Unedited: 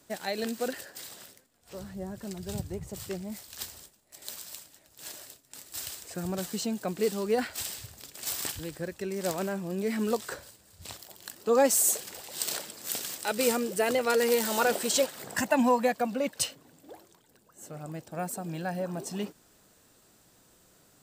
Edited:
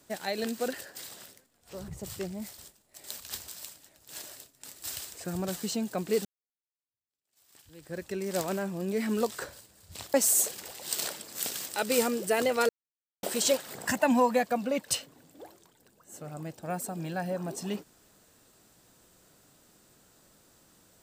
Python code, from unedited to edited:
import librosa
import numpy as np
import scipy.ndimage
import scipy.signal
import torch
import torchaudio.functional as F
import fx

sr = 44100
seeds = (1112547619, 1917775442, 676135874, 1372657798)

y = fx.edit(x, sr, fx.cut(start_s=1.88, length_s=0.9),
    fx.move(start_s=3.48, length_s=0.28, to_s=4.38),
    fx.fade_in_span(start_s=7.15, length_s=1.74, curve='exp'),
    fx.cut(start_s=11.04, length_s=0.59),
    fx.silence(start_s=14.18, length_s=0.54), tone=tone)